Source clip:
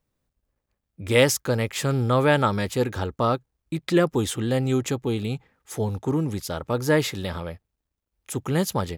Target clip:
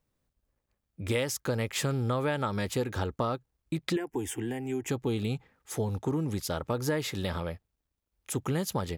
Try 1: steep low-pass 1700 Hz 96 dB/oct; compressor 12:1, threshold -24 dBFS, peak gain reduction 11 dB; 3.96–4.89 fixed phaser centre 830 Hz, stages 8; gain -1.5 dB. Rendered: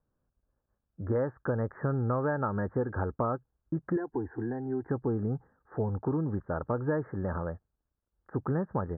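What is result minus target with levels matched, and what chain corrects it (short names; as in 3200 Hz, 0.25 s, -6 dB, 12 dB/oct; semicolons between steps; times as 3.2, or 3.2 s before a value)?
2000 Hz band -4.0 dB
compressor 12:1, threshold -24 dBFS, peak gain reduction 12.5 dB; 3.96–4.89 fixed phaser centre 830 Hz, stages 8; gain -1.5 dB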